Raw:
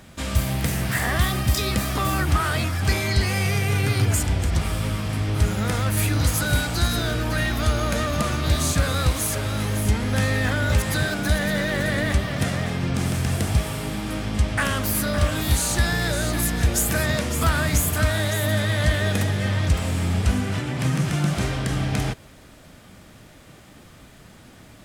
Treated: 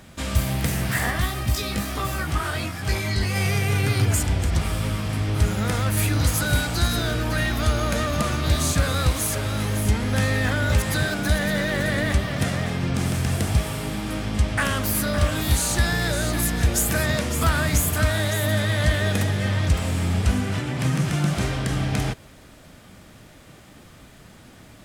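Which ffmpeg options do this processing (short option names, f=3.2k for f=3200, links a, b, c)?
-filter_complex "[0:a]asplit=3[a][b][c];[a]afade=t=out:st=1.1:d=0.02[d];[b]flanger=delay=17.5:depth=2.5:speed=1.4,afade=t=in:st=1.1:d=0.02,afade=t=out:st=3.34:d=0.02[e];[c]afade=t=in:st=3.34:d=0.02[f];[d][e][f]amix=inputs=3:normalize=0"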